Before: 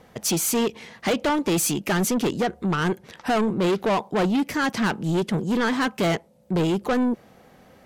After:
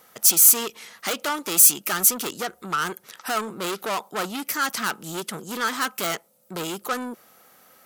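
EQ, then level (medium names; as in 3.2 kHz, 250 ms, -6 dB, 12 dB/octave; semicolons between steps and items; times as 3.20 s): RIAA curve recording; peaking EQ 1.3 kHz +10 dB 0.33 oct; treble shelf 11 kHz +8 dB; -5.0 dB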